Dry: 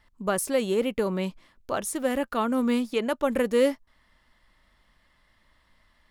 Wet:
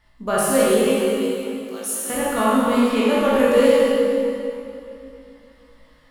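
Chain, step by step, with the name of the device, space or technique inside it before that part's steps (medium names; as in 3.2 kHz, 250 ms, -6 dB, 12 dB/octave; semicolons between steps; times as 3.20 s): 0.94–2.10 s: differentiator; tunnel (flutter echo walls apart 3.2 m, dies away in 0.21 s; reverberation RT60 2.8 s, pre-delay 19 ms, DRR -6.5 dB)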